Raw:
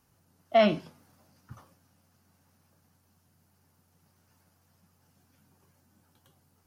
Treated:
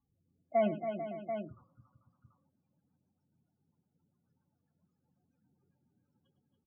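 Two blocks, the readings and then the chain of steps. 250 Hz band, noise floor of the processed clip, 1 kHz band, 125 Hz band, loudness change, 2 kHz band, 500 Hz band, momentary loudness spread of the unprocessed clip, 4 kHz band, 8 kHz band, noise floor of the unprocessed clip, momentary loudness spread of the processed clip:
-6.0 dB, -82 dBFS, -6.5 dB, -6.5 dB, -9.5 dB, -12.0 dB, -6.0 dB, 9 LU, -20.0 dB, no reading, -69 dBFS, 10 LU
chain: rotary cabinet horn 1.1 Hz, later 7.5 Hz, at 1.89 s; loudest bins only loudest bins 16; multi-tap echo 106/265/282/442/560/736 ms -14/-18/-8/-12.5/-16.5/-9 dB; trim -7 dB

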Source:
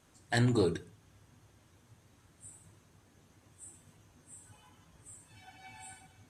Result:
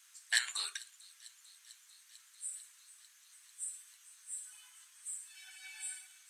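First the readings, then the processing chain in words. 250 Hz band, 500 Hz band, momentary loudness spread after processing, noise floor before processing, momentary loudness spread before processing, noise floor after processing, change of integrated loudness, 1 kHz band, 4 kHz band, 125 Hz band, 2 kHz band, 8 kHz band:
under -40 dB, under -30 dB, 24 LU, -65 dBFS, 22 LU, -64 dBFS, -9.0 dB, -11.5 dB, +6.5 dB, under -40 dB, +2.5 dB, +10.0 dB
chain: high-pass 1.4 kHz 24 dB/octave; treble shelf 3.6 kHz +9.5 dB; feedback echo behind a high-pass 446 ms, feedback 78%, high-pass 4.3 kHz, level -18 dB; trim +1.5 dB

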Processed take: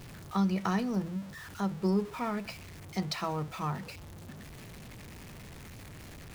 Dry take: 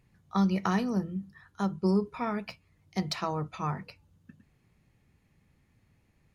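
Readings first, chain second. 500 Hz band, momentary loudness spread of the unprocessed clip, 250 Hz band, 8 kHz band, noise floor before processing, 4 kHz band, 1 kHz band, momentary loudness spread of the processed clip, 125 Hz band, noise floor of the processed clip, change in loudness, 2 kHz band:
-2.0 dB, 13 LU, -2.0 dB, no reading, -69 dBFS, -0.5 dB, -2.0 dB, 18 LU, -1.5 dB, -47 dBFS, -2.0 dB, -0.5 dB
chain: jump at every zero crossing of -38.5 dBFS; trim -3 dB

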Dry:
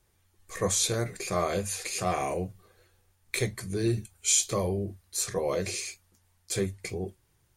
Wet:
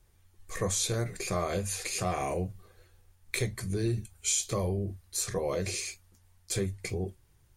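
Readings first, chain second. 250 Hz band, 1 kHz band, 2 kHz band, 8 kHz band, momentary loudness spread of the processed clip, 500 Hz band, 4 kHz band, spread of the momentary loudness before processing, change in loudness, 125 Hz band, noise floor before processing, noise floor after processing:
-2.0 dB, -3.0 dB, -2.0 dB, -3.5 dB, 8 LU, -3.0 dB, -3.0 dB, 12 LU, -2.5 dB, +0.5 dB, -69 dBFS, -64 dBFS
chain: bass shelf 88 Hz +10.5 dB; compression 2:1, threshold -29 dBFS, peak gain reduction 6 dB

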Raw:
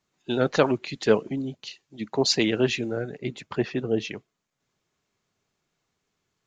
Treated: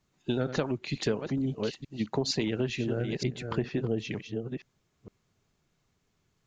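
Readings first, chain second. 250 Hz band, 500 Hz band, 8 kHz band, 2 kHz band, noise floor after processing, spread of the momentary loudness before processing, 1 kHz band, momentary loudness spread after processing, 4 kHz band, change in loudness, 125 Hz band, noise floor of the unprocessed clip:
-3.5 dB, -7.0 dB, -7.0 dB, -7.5 dB, -75 dBFS, 15 LU, -8.0 dB, 7 LU, -7.0 dB, -6.5 dB, +0.5 dB, -80 dBFS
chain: chunks repeated in reverse 462 ms, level -12 dB; bass shelf 180 Hz +12 dB; compression 6:1, threshold -26 dBFS, peak gain reduction 14.5 dB

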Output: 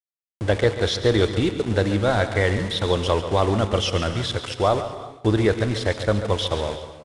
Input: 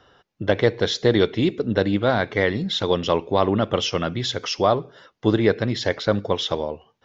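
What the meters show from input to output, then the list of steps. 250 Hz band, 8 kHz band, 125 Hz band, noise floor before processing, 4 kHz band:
-1.5 dB, no reading, +3.5 dB, -71 dBFS, -0.5 dB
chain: high-pass 44 Hz 12 dB/octave; in parallel at -9 dB: saturation -21.5 dBFS, distortion -6 dB; on the sum: resonant low shelf 100 Hz +13 dB, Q 1.5; level-controlled noise filter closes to 590 Hz, open at -15.5 dBFS; small samples zeroed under -27.5 dBFS; on a send: delay 139 ms -11.5 dB; on the sum: gated-style reverb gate 410 ms flat, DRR 11.5 dB; resampled via 22.05 kHz; trim -2 dB

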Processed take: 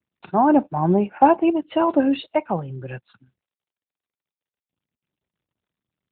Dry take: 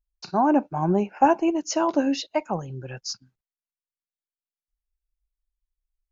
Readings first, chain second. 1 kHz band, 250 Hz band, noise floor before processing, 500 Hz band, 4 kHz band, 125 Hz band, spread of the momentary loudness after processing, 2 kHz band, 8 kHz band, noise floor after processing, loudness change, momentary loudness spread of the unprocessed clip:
+3.5 dB, +4.0 dB, under -85 dBFS, +3.5 dB, -4.0 dB, +4.0 dB, 17 LU, +2.0 dB, no reading, under -85 dBFS, +4.0 dB, 14 LU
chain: trim +4 dB; AMR-NB 12.2 kbps 8 kHz

